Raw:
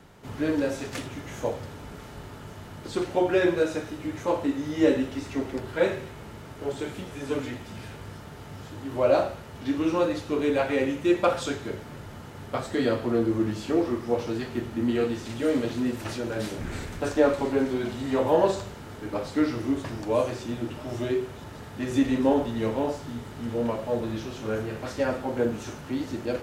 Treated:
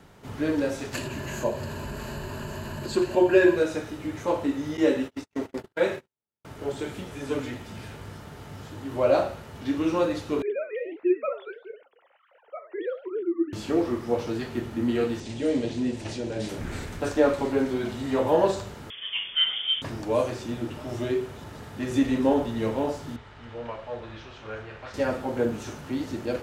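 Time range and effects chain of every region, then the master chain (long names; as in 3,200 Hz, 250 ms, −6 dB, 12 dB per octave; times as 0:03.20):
0:00.94–0:03.57: EQ curve with evenly spaced ripples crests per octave 1.4, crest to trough 11 dB + upward compression, threshold −26 dBFS
0:04.77–0:06.45: noise gate −34 dBFS, range −55 dB + low-shelf EQ 120 Hz −10.5 dB
0:10.42–0:13.53: three sine waves on the formant tracks + flanger 1.5 Hz, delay 2.2 ms, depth 9.7 ms, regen −82%
0:15.20–0:16.49: low-pass filter 8,700 Hz 24 dB per octave + parametric band 1,300 Hz −10.5 dB
0:18.90–0:19.82: high-frequency loss of the air 190 metres + voice inversion scrambler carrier 3,400 Hz
0:23.16–0:24.94: low-pass filter 3,300 Hz + parametric band 230 Hz −15 dB 2.4 octaves
whole clip: no processing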